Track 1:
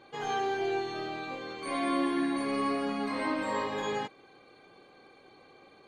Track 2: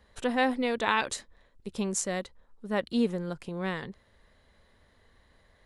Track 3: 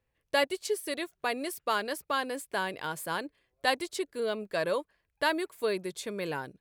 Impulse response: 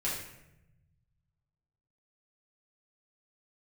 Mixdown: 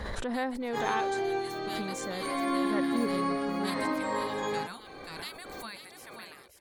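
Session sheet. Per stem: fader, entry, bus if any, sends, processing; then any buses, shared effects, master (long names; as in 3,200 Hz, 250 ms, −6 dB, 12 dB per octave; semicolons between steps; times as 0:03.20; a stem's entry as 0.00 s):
0.0 dB, 0.60 s, no send, no echo send, no processing
−6.5 dB, 0.00 s, no send, no echo send, high-shelf EQ 6,400 Hz −10.5 dB
0:01.18 −14.5 dB → 0:01.52 −3 dB, 0.00 s, no send, echo send −8.5 dB, gate on every frequency bin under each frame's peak −15 dB weak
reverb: not used
echo: single-tap delay 533 ms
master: parametric band 2,800 Hz −6.5 dB 0.45 octaves; background raised ahead of every attack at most 24 dB per second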